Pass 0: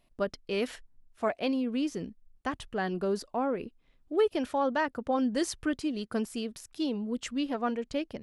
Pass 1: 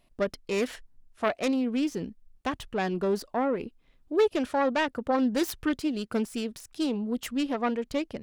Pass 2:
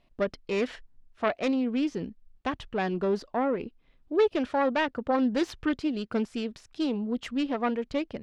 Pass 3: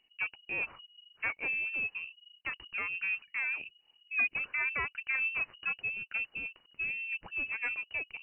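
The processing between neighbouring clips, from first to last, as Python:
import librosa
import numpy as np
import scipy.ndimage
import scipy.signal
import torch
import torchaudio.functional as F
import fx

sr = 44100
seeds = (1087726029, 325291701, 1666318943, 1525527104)

y1 = fx.self_delay(x, sr, depth_ms=0.19)
y1 = y1 * librosa.db_to_amplitude(3.0)
y2 = scipy.signal.sosfilt(scipy.signal.butter(2, 4500.0, 'lowpass', fs=sr, output='sos'), y1)
y3 = fx.freq_invert(y2, sr, carrier_hz=2900)
y3 = y3 * librosa.db_to_amplitude(-7.5)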